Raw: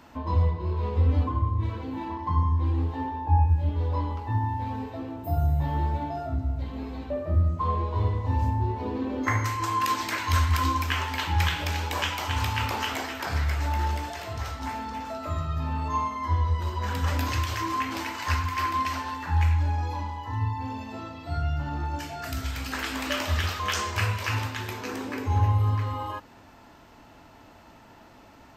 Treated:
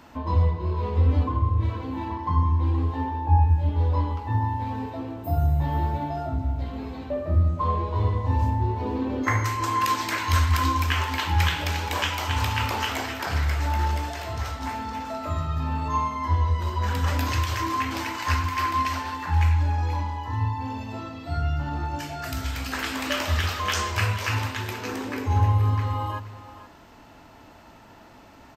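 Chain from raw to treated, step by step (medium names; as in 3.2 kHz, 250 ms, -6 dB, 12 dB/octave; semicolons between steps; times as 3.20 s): delay 475 ms -14.5 dB; trim +2 dB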